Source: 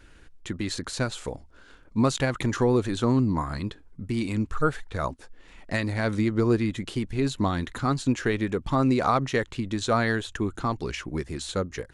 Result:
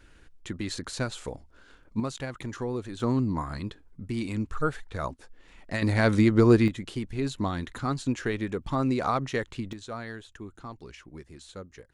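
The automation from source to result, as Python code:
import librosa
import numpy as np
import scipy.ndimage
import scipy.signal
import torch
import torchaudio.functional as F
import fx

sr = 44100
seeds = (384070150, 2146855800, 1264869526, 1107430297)

y = fx.gain(x, sr, db=fx.steps((0.0, -3.0), (2.0, -10.0), (3.0, -3.5), (5.82, 4.0), (6.68, -4.0), (9.73, -14.0)))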